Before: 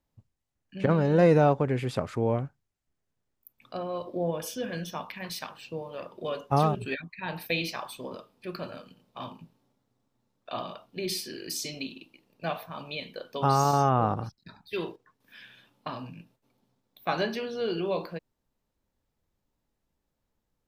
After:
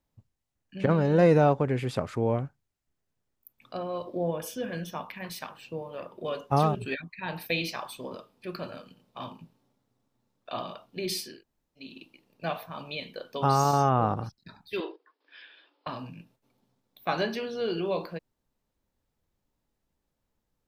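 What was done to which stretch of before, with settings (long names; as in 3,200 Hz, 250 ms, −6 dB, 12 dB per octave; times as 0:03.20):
0:04.33–0:06.28: parametric band 4,700 Hz −5 dB 1.2 octaves
0:11.32–0:11.87: fill with room tone, crossfade 0.24 s
0:14.80–0:15.87: Chebyshev band-pass filter 300–5,000 Hz, order 5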